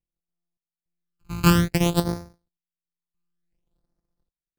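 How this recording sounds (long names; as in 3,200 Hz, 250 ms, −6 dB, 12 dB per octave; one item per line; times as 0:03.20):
a buzz of ramps at a fixed pitch in blocks of 256 samples
sample-and-hold tremolo 3.5 Hz, depth 95%
phaser sweep stages 12, 0.56 Hz, lowest notch 580–2,900 Hz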